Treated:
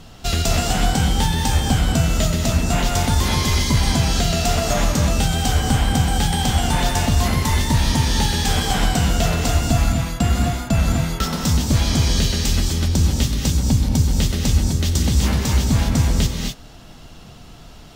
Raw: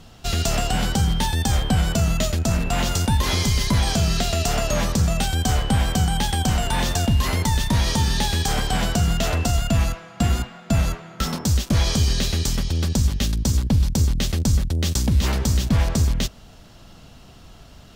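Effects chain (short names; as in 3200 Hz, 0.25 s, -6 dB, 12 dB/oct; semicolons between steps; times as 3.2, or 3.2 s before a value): non-linear reverb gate 0.28 s rising, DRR 0.5 dB; in parallel at -0.5 dB: vocal rider 0.5 s; on the sum: gain -5.5 dB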